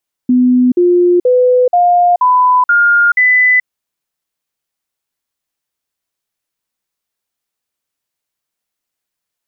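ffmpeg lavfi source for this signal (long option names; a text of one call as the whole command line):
ffmpeg -f lavfi -i "aevalsrc='0.501*clip(min(mod(t,0.48),0.43-mod(t,0.48))/0.005,0,1)*sin(2*PI*250*pow(2,floor(t/0.48)/2)*mod(t,0.48))':duration=3.36:sample_rate=44100" out.wav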